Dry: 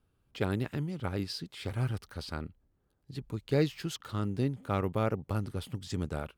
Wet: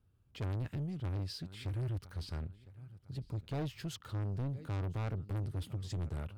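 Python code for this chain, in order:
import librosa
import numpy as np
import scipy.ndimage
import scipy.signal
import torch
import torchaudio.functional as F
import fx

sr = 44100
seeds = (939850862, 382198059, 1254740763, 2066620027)

y = fx.peak_eq(x, sr, hz=91.0, db=12.0, octaves=1.6)
y = fx.echo_feedback(y, sr, ms=1005, feedback_pct=39, wet_db=-23.5)
y = 10.0 ** (-28.0 / 20.0) * np.tanh(y / 10.0 ** (-28.0 / 20.0))
y = y * librosa.db_to_amplitude(-5.5)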